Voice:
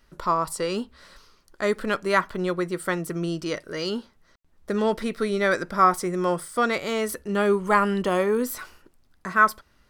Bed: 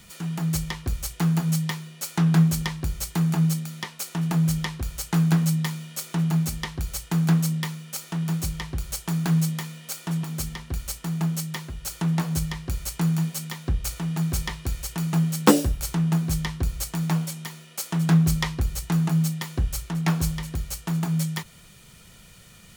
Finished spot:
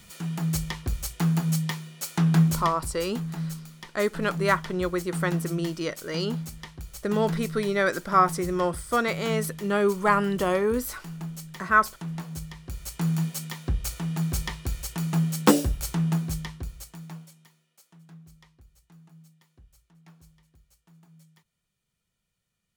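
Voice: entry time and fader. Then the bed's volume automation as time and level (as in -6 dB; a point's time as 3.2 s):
2.35 s, -1.5 dB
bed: 2.51 s -1.5 dB
2.94 s -10.5 dB
12.54 s -10.5 dB
13.13 s -2 dB
16.09 s -2 dB
18.1 s -31 dB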